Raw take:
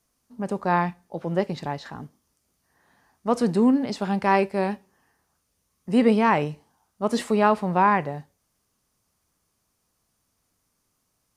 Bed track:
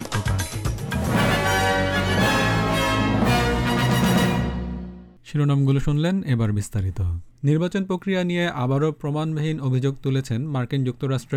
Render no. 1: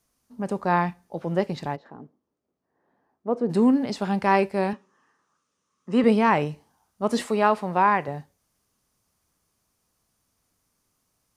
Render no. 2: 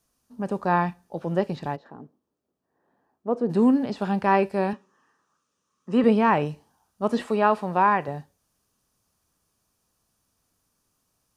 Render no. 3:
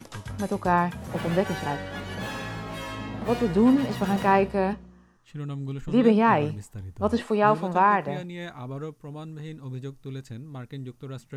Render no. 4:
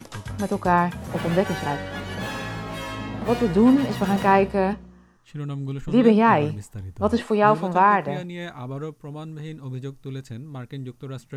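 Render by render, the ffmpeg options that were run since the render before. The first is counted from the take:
-filter_complex "[0:a]asplit=3[s0][s1][s2];[s0]afade=t=out:st=1.75:d=0.02[s3];[s1]bandpass=f=400:t=q:w=1.1,afade=t=in:st=1.75:d=0.02,afade=t=out:st=3.49:d=0.02[s4];[s2]afade=t=in:st=3.49:d=0.02[s5];[s3][s4][s5]amix=inputs=3:normalize=0,asettb=1/sr,asplit=3[s6][s7][s8];[s6]atrim=end=4.734[s9];[s7]atrim=start=4.73:end=6.04,asetpts=PTS-STARTPTS,afade=t=in:d=0.004:c=qsin,afade=t=out:st=1.306:d=0.004:c=qsin,highpass=200,equalizer=f=730:t=q:w=4:g=-8,equalizer=f=1200:t=q:w=4:g=9,equalizer=f=2200:t=q:w=4:g=-3,equalizer=f=4600:t=q:w=4:g=-6,lowpass=f=7400:w=0.5412,lowpass=f=7400:w=1.3066[s10];[s8]atrim=start=6.036[s11];[s9][s10]acrossfade=d=0.004:c1=hsin:c2=qsin[s12];[s12][s11]acrossfade=d=0.004:c1=qsin:c2=hsin,asettb=1/sr,asplit=3[s13][s14][s15];[s13]atrim=end=7.264[s16];[s14]atrim=start=7.26:end=8.08,asetpts=PTS-STARTPTS,afade=t=in:d=0.004:c=qsin,afade=t=out:st=0.816:d=0.004:c=qsin,lowshelf=f=160:g=-11.5[s17];[s15]atrim=start=8.076[s18];[s16][s17]acrossfade=d=0.004:c1=hsin:c2=qsin[s19];[s19][s18]acrossfade=d=0.004:c1=qsin:c2=hsin"
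-filter_complex "[0:a]bandreject=f=2100:w=8.7,acrossover=split=3400[s0][s1];[s1]acompressor=threshold=0.00316:ratio=4:attack=1:release=60[s2];[s0][s2]amix=inputs=2:normalize=0"
-filter_complex "[1:a]volume=0.2[s0];[0:a][s0]amix=inputs=2:normalize=0"
-af "volume=1.41"

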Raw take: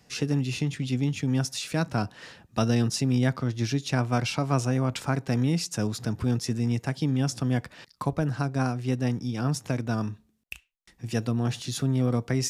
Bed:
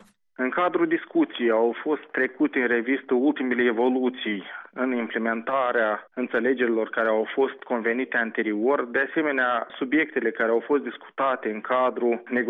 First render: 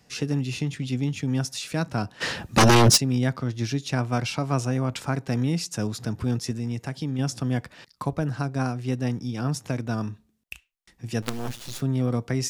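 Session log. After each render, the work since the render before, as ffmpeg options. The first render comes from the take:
-filter_complex "[0:a]asplit=3[s0][s1][s2];[s0]afade=t=out:st=2.2:d=0.02[s3];[s1]aeval=exprs='0.282*sin(PI/2*4.47*val(0)/0.282)':c=same,afade=t=in:st=2.2:d=0.02,afade=t=out:st=2.96:d=0.02[s4];[s2]afade=t=in:st=2.96:d=0.02[s5];[s3][s4][s5]amix=inputs=3:normalize=0,asettb=1/sr,asplit=3[s6][s7][s8];[s6]atrim=end=6.514[s9];[s7]atrim=start=6.51:end=7.19,asetpts=PTS-STARTPTS,afade=t=in:d=0.004:c=qsin,afade=t=out:st=0.676:d=0.004:c=qsin,acompressor=threshold=0.0316:ratio=1.5:attack=3.2:release=140:knee=1:detection=peak[s10];[s8]atrim=start=7.186[s11];[s9][s10]acrossfade=d=0.004:c1=hsin:c2=qsin[s12];[s12][s11]acrossfade=d=0.004:c1=qsin:c2=hsin,asettb=1/sr,asplit=3[s13][s14][s15];[s13]atrim=end=11.224[s16];[s14]atrim=start=11.22:end=11.81,asetpts=PTS-STARTPTS,afade=t=in:d=0.004:c=qsin,afade=t=out:st=0.586:d=0.004:c=qsin,acrusher=bits=4:dc=4:mix=0:aa=0.000001[s17];[s15]atrim=start=11.806[s18];[s16][s17]acrossfade=d=0.004:c1=hsin:c2=qsin[s19];[s19][s18]acrossfade=d=0.004:c1=qsin:c2=hsin"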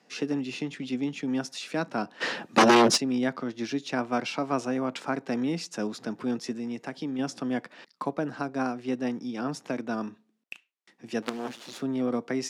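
-af "highpass=f=220:w=0.5412,highpass=f=220:w=1.3066,aemphasis=mode=reproduction:type=50fm"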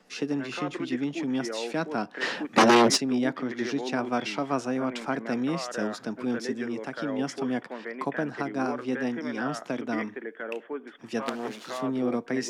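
-filter_complex "[1:a]volume=0.224[s0];[0:a][s0]amix=inputs=2:normalize=0"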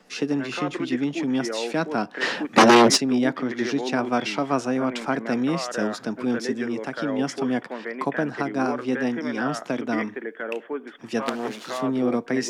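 -af "volume=1.68"

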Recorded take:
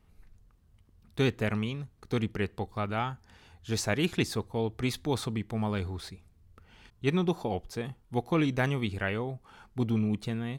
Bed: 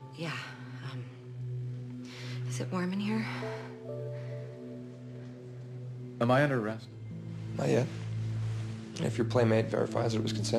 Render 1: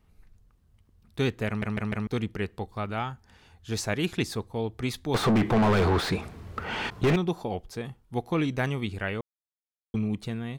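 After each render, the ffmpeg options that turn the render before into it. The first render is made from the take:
-filter_complex "[0:a]asettb=1/sr,asplit=3[s0][s1][s2];[s0]atrim=end=5.144[s3];[s1]atrim=start=5.14:end=7.16,asetpts=PTS-STARTPTS,afade=t=in:d=0.004:c=qsin,afade=t=out:st=2.016:d=0.004:c=qsin,asplit=2[s4][s5];[s5]highpass=f=720:p=1,volume=126,asoftclip=type=tanh:threshold=0.211[s6];[s4][s6]amix=inputs=2:normalize=0,lowpass=f=1100:p=1,volume=0.501[s7];[s2]atrim=start=7.156[s8];[s3][s7]acrossfade=d=0.004:c1=hsin:c2=qsin[s9];[s9][s8]acrossfade=d=0.004:c1=qsin:c2=hsin,asplit=7[s10][s11][s12][s13][s14][s15][s16];[s10]atrim=end=1.622[s17];[s11]atrim=start=1.468:end=1.622[s18];[s12]atrim=start=1.468:end=1.622[s19];[s13]atrim=start=1.468:end=1.622[s20];[s14]atrim=start=2.068:end=9.21,asetpts=PTS-STARTPTS,afade=t=out:st=7.138:d=0.004:c=hsin[s21];[s15]atrim=start=9.21:end=9.94,asetpts=PTS-STARTPTS,volume=0[s22];[s16]atrim=start=9.94,asetpts=PTS-STARTPTS,afade=t=in:d=0.004:c=hsin[s23];[s17][s18]acrossfade=d=0.004:c1=hsin:c2=hsin[s24];[s24][s19]acrossfade=d=0.004:c1=hsin:c2=hsin[s25];[s25][s20]acrossfade=d=0.004:c1=hsin:c2=hsin[s26];[s21][s22][s23]concat=n=3:v=0:a=1[s27];[s26][s27]acrossfade=d=0.004:c1=hsin:c2=hsin"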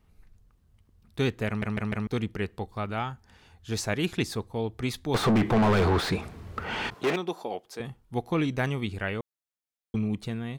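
-filter_complex "[0:a]asettb=1/sr,asplit=3[s0][s1][s2];[s0]atrim=end=6.944[s3];[s1]atrim=start=6.94:end=7.8,asetpts=PTS-STARTPTS,afade=t=in:d=0.004:c=qsin,afade=t=out:st=0.856:d=0.004:c=qsin,highpass=340[s4];[s2]atrim=start=7.796[s5];[s3][s4]acrossfade=d=0.004:c1=hsin:c2=qsin[s6];[s6][s5]acrossfade=d=0.004:c1=qsin:c2=hsin"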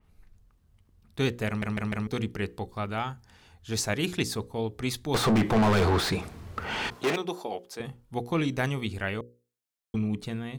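-af "bandreject=f=60:t=h:w=6,bandreject=f=120:t=h:w=6,bandreject=f=180:t=h:w=6,bandreject=f=240:t=h:w=6,bandreject=f=300:t=h:w=6,bandreject=f=360:t=h:w=6,bandreject=f=420:t=h:w=6,bandreject=f=480:t=h:w=6,bandreject=f=540:t=h:w=6,adynamicequalizer=threshold=0.00562:dfrequency=4000:dqfactor=0.7:tfrequency=4000:tqfactor=0.7:attack=5:release=100:ratio=0.375:range=2.5:mode=boostabove:tftype=highshelf"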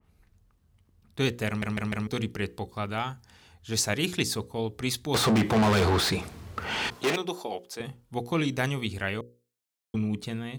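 -af "highpass=45,adynamicequalizer=threshold=0.00562:dfrequency=2400:dqfactor=0.7:tfrequency=2400:tqfactor=0.7:attack=5:release=100:ratio=0.375:range=2:mode=boostabove:tftype=highshelf"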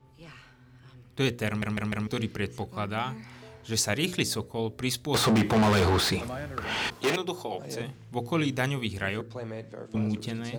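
-filter_complex "[1:a]volume=0.266[s0];[0:a][s0]amix=inputs=2:normalize=0"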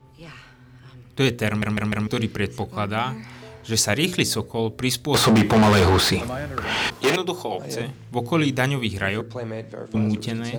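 -af "volume=2.11"

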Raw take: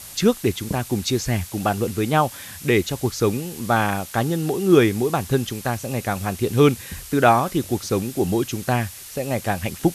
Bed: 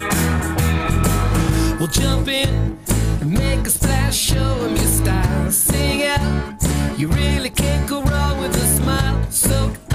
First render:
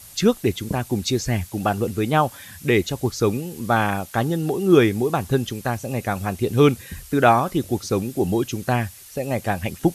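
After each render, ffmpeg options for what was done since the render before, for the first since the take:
-af "afftdn=nr=7:nf=-39"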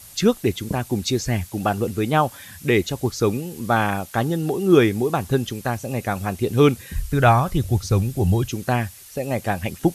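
-filter_complex "[0:a]asplit=3[s0][s1][s2];[s0]afade=t=out:st=6.94:d=0.02[s3];[s1]asubboost=boost=9.5:cutoff=97,afade=t=in:st=6.94:d=0.02,afade=t=out:st=8.49:d=0.02[s4];[s2]afade=t=in:st=8.49:d=0.02[s5];[s3][s4][s5]amix=inputs=3:normalize=0"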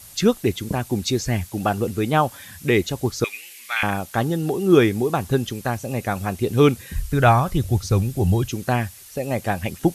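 -filter_complex "[0:a]asettb=1/sr,asplit=3[s0][s1][s2];[s0]atrim=end=3.244[s3];[s1]atrim=start=3.24:end=3.83,asetpts=PTS-STARTPTS,afade=t=in:d=0.004:c=qsin,afade=t=out:st=0.586:d=0.004:c=qsin,highpass=f=2200:t=q:w=4.8[s4];[s2]atrim=start=3.826[s5];[s3][s4]acrossfade=d=0.004:c1=hsin:c2=qsin[s6];[s6][s5]acrossfade=d=0.004:c1=qsin:c2=hsin"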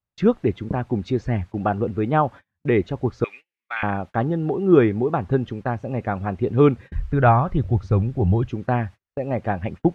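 -af "agate=range=0.0141:threshold=0.0224:ratio=16:detection=peak,lowpass=1600"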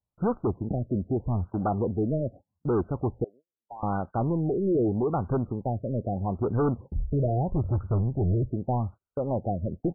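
-af "aresample=11025,asoftclip=type=tanh:threshold=0.0891,aresample=44100,afftfilt=real='re*lt(b*sr/1024,650*pow(1600/650,0.5+0.5*sin(2*PI*0.8*pts/sr)))':imag='im*lt(b*sr/1024,650*pow(1600/650,0.5+0.5*sin(2*PI*0.8*pts/sr)))':win_size=1024:overlap=0.75"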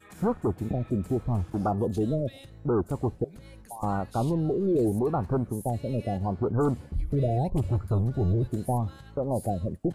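-filter_complex "[1:a]volume=0.0299[s0];[0:a][s0]amix=inputs=2:normalize=0"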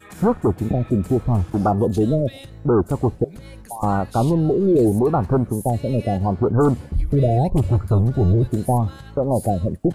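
-af "volume=2.66"

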